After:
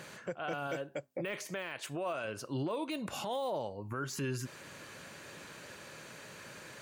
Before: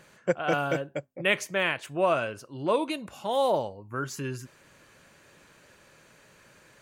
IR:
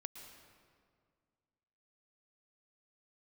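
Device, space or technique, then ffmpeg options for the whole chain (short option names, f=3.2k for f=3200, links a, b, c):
broadcast voice chain: -filter_complex "[0:a]highpass=85,deesser=0.9,acompressor=threshold=-39dB:ratio=5,equalizer=f=4.2k:t=o:w=0.77:g=2,alimiter=level_in=10.5dB:limit=-24dB:level=0:latency=1:release=18,volume=-10.5dB,asettb=1/sr,asplit=3[a][b][c];[a]atrim=end=0.674[d];[b]atrim=start=0.67:end=2.25,asetpts=PTS-STARTPTS,afade=t=in:d=0.004:c=qsin,afade=t=out:st=1.576:d=0.004:c=qsin,bass=f=250:g=-5,treble=f=4k:g=3[e];[c]atrim=start=2.246[f];[d][e]acrossfade=d=0.004:c1=hsin:c2=qsin[g];[g][f]acrossfade=d=0.004:c1=qsin:c2=hsin,volume=7dB"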